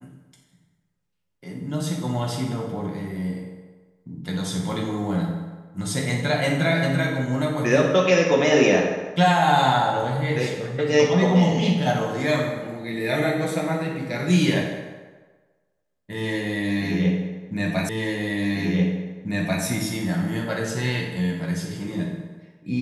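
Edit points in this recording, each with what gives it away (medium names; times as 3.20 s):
17.89 s: repeat of the last 1.74 s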